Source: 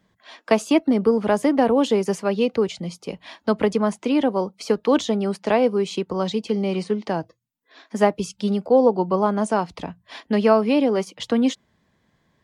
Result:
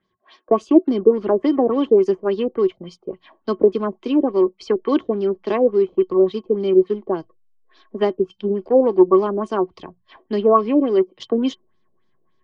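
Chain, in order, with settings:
dynamic equaliser 320 Hz, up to +7 dB, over −31 dBFS, Q 1.4
in parallel at −4 dB: slack as between gear wheels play −22 dBFS
on the sum: hollow resonant body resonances 370/1,100/3,100 Hz, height 15 dB, ringing for 85 ms
auto-filter low-pass sine 3.5 Hz 500–5,500 Hz
level −11.5 dB

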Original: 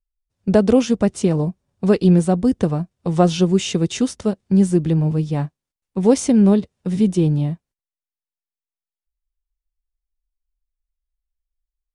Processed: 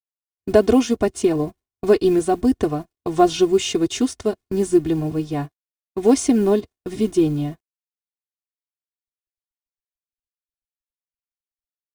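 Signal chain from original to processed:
mu-law and A-law mismatch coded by A
noise gate with hold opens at −29 dBFS
comb filter 2.8 ms, depth 84%
level −1 dB

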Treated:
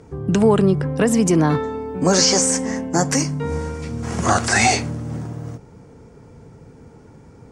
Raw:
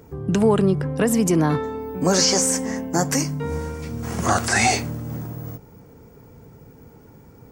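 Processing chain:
low-pass filter 9,600 Hz 24 dB per octave
level +2.5 dB

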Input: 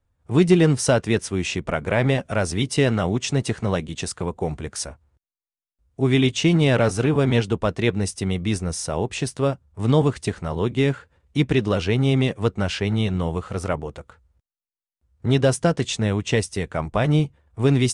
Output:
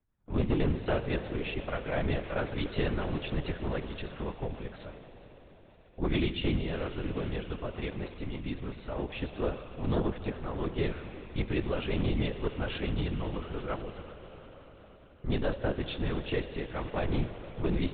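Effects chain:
0:06.56–0:08.82: downward compressor, threshold −22 dBFS, peak gain reduction 8.5 dB
soft clipping −12.5 dBFS, distortion −16 dB
convolution reverb RT60 5.7 s, pre-delay 17 ms, DRR 7.5 dB
linear-prediction vocoder at 8 kHz whisper
level −9 dB

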